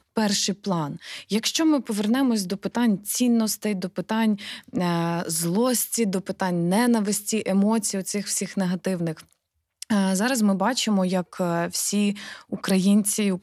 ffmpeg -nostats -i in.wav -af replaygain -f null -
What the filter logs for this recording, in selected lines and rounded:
track_gain = +4.7 dB
track_peak = 0.251